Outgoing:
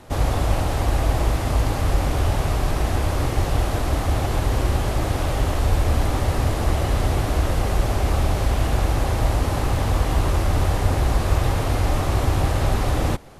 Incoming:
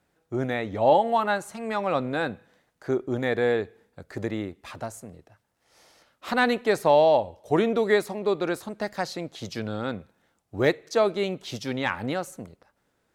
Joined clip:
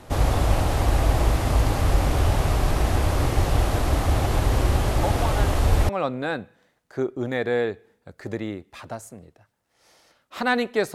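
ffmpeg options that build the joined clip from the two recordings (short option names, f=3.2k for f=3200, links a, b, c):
-filter_complex "[1:a]asplit=2[a][b];[0:a]apad=whole_dur=10.94,atrim=end=10.94,atrim=end=5.892[c];[b]atrim=start=1.798:end=6.85[d];[a]atrim=start=0.94:end=1.8,asetpts=PTS-STARTPTS,volume=-8dB,afade=t=in:d=0.004:c=hsin,afade=t=out:st=0.856:d=0.004:c=hsin,adelay=5030[e];[c][d]acrossfade=d=0.004:c1=hsin:c2=hsin[f];[f][e]amix=inputs=2:normalize=0"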